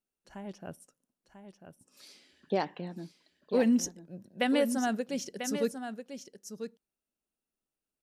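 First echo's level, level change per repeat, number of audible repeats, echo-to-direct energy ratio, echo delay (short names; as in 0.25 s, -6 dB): -9.0 dB, no steady repeat, 1, -9.0 dB, 0.993 s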